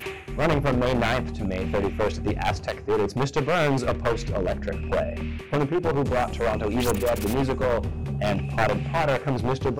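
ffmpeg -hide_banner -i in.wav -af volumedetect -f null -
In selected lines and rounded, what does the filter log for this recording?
mean_volume: -24.6 dB
max_volume: -8.3 dB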